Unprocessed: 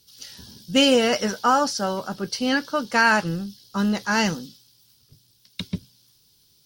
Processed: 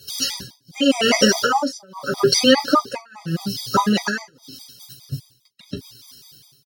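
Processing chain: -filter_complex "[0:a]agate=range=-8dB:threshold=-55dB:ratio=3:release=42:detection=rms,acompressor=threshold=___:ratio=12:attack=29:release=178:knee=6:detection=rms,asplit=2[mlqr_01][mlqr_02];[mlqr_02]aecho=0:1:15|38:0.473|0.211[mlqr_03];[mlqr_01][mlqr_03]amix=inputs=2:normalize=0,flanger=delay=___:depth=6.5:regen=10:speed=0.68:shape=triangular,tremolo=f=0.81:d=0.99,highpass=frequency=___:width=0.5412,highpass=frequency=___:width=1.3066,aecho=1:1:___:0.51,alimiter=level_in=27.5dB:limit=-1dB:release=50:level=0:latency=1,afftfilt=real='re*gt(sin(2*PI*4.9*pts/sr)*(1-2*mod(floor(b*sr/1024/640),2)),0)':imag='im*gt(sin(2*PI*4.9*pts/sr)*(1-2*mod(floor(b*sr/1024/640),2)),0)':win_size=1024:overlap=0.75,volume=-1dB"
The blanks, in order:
-31dB, 1.8, 51, 51, 7.2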